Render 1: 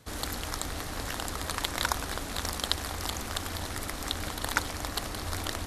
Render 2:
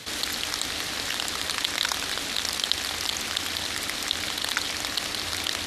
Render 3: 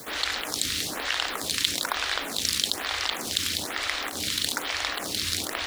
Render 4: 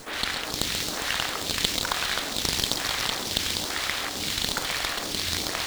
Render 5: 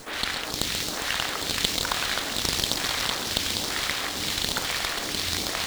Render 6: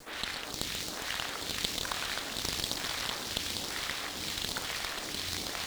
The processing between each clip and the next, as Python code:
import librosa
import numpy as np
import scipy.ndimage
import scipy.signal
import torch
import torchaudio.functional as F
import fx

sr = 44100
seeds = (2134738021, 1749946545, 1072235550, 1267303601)

y1 = fx.weighting(x, sr, curve='D')
y1 = fx.env_flatten(y1, sr, amount_pct=50)
y1 = y1 * 10.0 ** (-7.0 / 20.0)
y2 = fx.quant_dither(y1, sr, seeds[0], bits=8, dither='triangular')
y2 = fx.stagger_phaser(y2, sr, hz=1.1)
y2 = y2 * 10.0 ** (4.0 / 20.0)
y3 = fx.echo_wet_highpass(y2, sr, ms=135, feedback_pct=84, hz=4700.0, wet_db=-4.0)
y3 = fx.running_max(y3, sr, window=3)
y4 = y3 + 10.0 ** (-9.0 / 20.0) * np.pad(y3, (int(1194 * sr / 1000.0), 0))[:len(y3)]
y5 = fx.vibrato_shape(y4, sr, shape='saw_down', rate_hz=3.8, depth_cents=100.0)
y5 = y5 * 10.0 ** (-8.0 / 20.0)